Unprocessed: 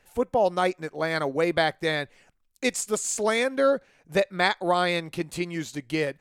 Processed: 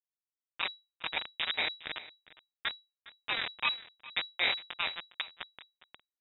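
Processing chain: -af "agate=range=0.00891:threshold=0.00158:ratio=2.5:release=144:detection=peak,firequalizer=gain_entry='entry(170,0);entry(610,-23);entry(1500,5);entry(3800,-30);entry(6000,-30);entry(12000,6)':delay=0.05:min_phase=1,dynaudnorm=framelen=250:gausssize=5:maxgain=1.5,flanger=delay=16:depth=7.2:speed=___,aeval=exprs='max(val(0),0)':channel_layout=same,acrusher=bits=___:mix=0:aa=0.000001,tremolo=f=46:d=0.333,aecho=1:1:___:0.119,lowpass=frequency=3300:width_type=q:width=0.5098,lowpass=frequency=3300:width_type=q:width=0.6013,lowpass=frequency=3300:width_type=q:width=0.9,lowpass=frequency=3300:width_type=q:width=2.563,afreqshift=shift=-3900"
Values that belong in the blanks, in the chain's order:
0.56, 3, 409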